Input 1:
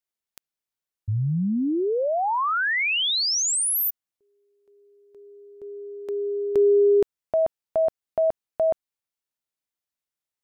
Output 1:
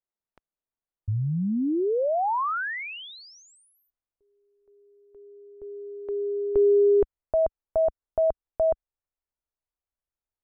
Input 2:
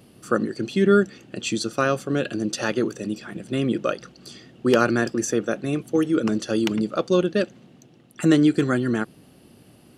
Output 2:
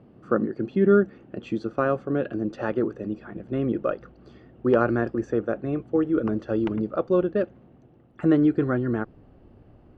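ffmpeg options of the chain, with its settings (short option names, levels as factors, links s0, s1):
-af "lowpass=1200,asubboost=boost=8.5:cutoff=57"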